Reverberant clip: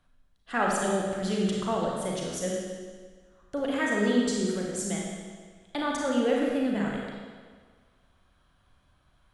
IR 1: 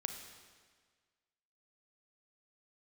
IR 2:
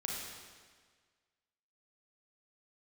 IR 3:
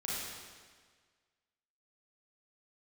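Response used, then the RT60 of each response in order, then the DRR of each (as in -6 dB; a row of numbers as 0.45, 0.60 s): 2; 1.6, 1.6, 1.6 s; 5.5, -2.5, -7.0 dB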